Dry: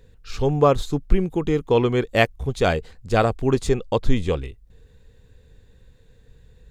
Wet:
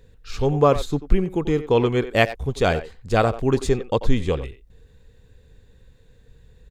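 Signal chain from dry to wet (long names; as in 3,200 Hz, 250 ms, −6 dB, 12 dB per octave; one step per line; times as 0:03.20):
far-end echo of a speakerphone 90 ms, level −12 dB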